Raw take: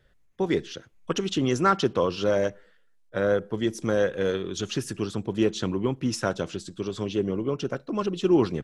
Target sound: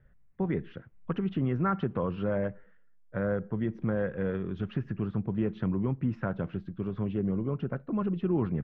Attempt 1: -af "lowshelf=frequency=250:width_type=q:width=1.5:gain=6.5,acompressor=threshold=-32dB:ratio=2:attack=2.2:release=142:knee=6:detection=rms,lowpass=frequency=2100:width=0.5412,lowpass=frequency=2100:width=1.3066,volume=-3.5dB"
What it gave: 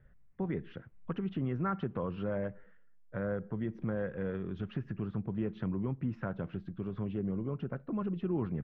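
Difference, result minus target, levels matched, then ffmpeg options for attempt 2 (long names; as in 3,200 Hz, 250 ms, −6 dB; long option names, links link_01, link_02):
downward compressor: peak gain reduction +5.5 dB
-af "lowshelf=frequency=250:width_type=q:width=1.5:gain=6.5,acompressor=threshold=-21.5dB:ratio=2:attack=2.2:release=142:knee=6:detection=rms,lowpass=frequency=2100:width=0.5412,lowpass=frequency=2100:width=1.3066,volume=-3.5dB"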